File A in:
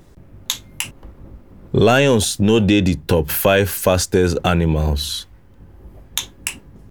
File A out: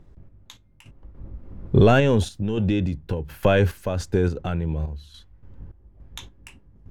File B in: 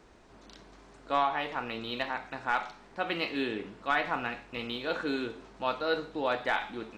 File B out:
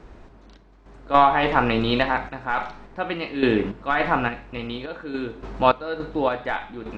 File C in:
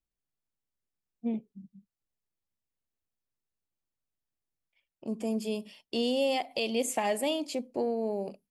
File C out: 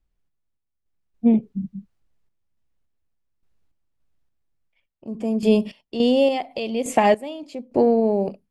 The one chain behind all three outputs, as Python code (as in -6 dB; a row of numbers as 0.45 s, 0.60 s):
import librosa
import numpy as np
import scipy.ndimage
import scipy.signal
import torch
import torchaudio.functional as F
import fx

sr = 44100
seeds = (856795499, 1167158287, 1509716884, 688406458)

y = fx.low_shelf(x, sr, hz=120.0, db=11.0)
y = fx.tremolo_random(y, sr, seeds[0], hz=3.5, depth_pct=90)
y = fx.lowpass(y, sr, hz=2300.0, slope=6)
y = y * 10.0 ** (-24 / 20.0) / np.sqrt(np.mean(np.square(y)))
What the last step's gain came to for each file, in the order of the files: -3.0 dB, +16.0 dB, +17.0 dB